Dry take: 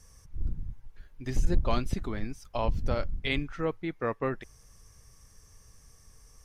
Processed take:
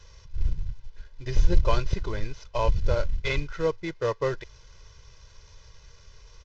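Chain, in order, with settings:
variable-slope delta modulation 32 kbit/s
comb filter 2 ms, depth 80%
level +1.5 dB

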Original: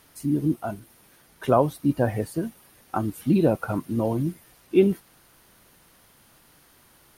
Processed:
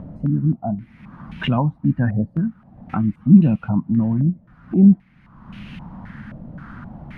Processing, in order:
low shelf with overshoot 290 Hz +12 dB, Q 3
upward compression, threshold −12 dBFS
low-pass on a step sequencer 3.8 Hz 580–2,700 Hz
level −7 dB

